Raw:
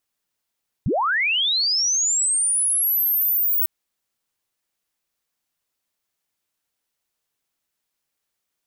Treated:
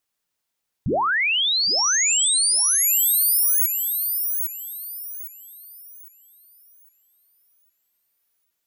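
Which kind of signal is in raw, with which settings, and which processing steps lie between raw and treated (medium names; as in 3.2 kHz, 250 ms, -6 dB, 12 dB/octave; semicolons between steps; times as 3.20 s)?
sweep linear 78 Hz -> 16 kHz -18 dBFS -> -17 dBFS 2.80 s
hum notches 50/100/150/200/250/300/350/400 Hz; on a send: thinning echo 807 ms, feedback 33%, high-pass 950 Hz, level -4.5 dB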